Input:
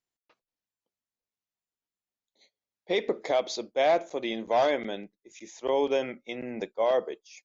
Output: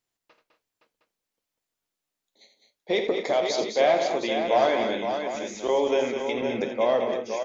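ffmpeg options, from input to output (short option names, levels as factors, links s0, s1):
-filter_complex "[0:a]asplit=2[s0][s1];[s1]acompressor=threshold=0.0178:ratio=6,volume=1.12[s2];[s0][s2]amix=inputs=2:normalize=0,flanger=delay=8.4:depth=5.5:regen=63:speed=1.2:shape=triangular,aecho=1:1:50|83|206|242|517|713:0.224|0.355|0.422|0.211|0.473|0.282,volume=1.58"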